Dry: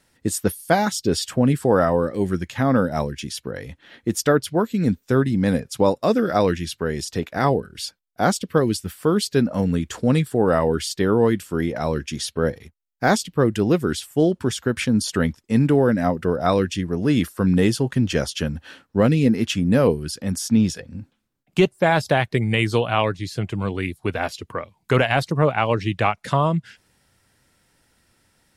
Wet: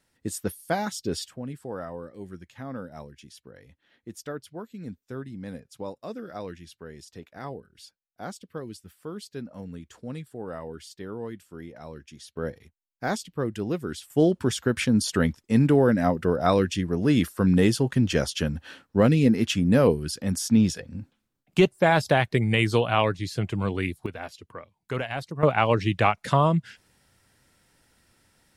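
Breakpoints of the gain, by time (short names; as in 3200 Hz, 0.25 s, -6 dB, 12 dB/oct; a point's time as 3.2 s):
-8.5 dB
from 1.28 s -18 dB
from 12.37 s -10 dB
from 14.1 s -2 dB
from 24.06 s -12 dB
from 25.43 s -1 dB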